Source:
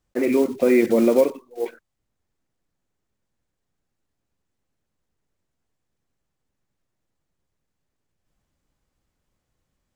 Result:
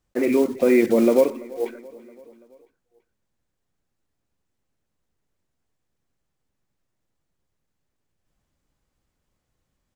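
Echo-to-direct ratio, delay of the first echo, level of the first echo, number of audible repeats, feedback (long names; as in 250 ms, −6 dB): −20.0 dB, 335 ms, −22.0 dB, 3, 59%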